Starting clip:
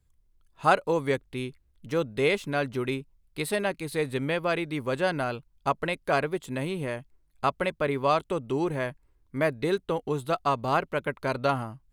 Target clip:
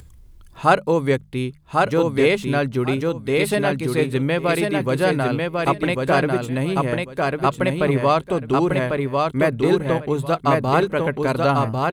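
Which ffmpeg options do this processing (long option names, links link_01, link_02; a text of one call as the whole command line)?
ffmpeg -i in.wav -af "highpass=frequency=61:poles=1,lowshelf=frequency=240:gain=9,bandreject=frequency=50:width_type=h:width=6,bandreject=frequency=100:width_type=h:width=6,bandreject=frequency=150:width_type=h:width=6,bandreject=frequency=200:width_type=h:width=6,aecho=1:1:1097|2194|3291:0.708|0.135|0.0256,acompressor=mode=upward:threshold=-37dB:ratio=2.5,volume=5dB" out.wav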